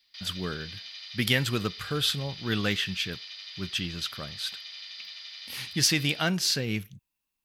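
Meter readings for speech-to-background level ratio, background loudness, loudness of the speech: 11.5 dB, −40.0 LKFS, −28.5 LKFS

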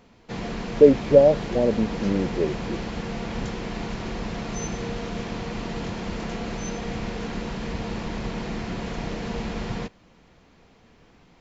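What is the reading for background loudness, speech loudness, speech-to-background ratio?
−31.5 LKFS, −20.0 LKFS, 11.5 dB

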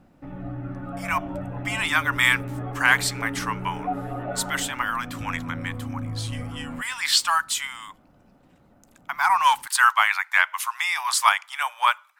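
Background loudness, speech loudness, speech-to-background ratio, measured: −33.5 LKFS, −22.5 LKFS, 11.0 dB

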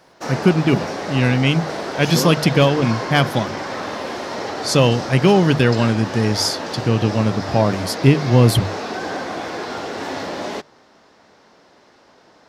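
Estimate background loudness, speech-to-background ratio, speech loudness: −27.0 LKFS, 9.5 dB, −17.5 LKFS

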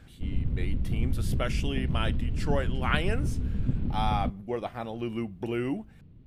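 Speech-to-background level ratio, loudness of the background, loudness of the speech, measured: −2.5 dB, −31.5 LKFS, −34.0 LKFS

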